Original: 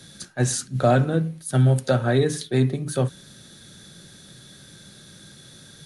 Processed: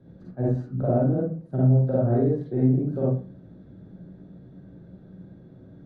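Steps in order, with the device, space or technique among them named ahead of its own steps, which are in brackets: television next door (compression 4:1, threshold -20 dBFS, peak gain reduction 6.5 dB; low-pass 550 Hz 12 dB/octave; reverberation RT60 0.35 s, pre-delay 42 ms, DRR -6 dB); trim -3.5 dB

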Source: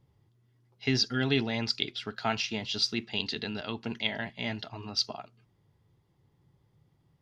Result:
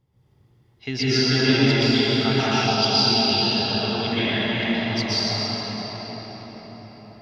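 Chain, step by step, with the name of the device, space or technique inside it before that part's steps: cathedral (reverberation RT60 6.0 s, pre-delay 116 ms, DRR -13 dB); 2.67–4.13 s: graphic EQ with 31 bands 315 Hz -7 dB, 800 Hz +7 dB, 2 kHz -11 dB, 5 kHz +7 dB, 8 kHz -11 dB; trim -2 dB

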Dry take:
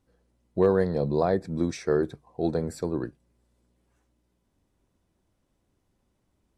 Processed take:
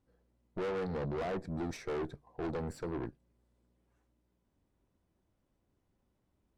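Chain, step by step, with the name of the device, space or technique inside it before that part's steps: tube preamp driven hard (valve stage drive 33 dB, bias 0.75; treble shelf 3.7 kHz -8 dB)

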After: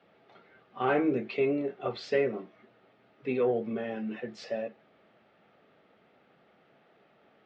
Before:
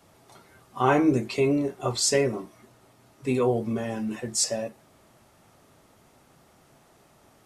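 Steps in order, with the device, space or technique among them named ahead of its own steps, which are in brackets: overdrive pedal into a guitar cabinet (overdrive pedal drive 11 dB, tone 3.1 kHz, clips at -7.5 dBFS; cabinet simulation 90–3500 Hz, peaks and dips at 100 Hz -5 dB, 200 Hz +6 dB, 460 Hz +5 dB, 1 kHz -10 dB); trim -7 dB

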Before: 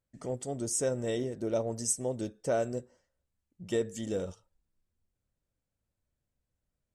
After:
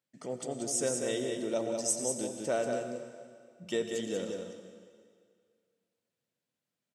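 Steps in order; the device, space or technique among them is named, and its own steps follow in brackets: PA in a hall (high-pass 150 Hz 24 dB/octave; peaking EQ 3.2 kHz +6.5 dB 1.9 oct; delay 188 ms -5.5 dB; reverberation RT60 2.1 s, pre-delay 79 ms, DRR 8 dB); trim -2.5 dB

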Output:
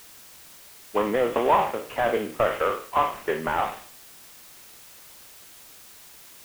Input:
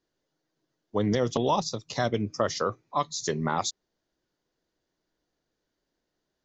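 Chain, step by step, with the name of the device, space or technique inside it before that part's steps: spectral sustain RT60 0.43 s; army field radio (band-pass 390–2800 Hz; CVSD coder 16 kbps; white noise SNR 20 dB); trim +5.5 dB

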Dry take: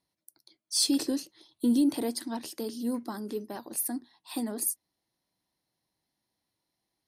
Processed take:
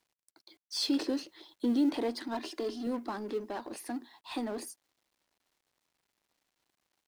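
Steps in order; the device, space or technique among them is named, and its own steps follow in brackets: phone line with mismatched companding (band-pass 310–3300 Hz; companding laws mixed up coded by mu); 2.34–2.87 s: comb 2.9 ms

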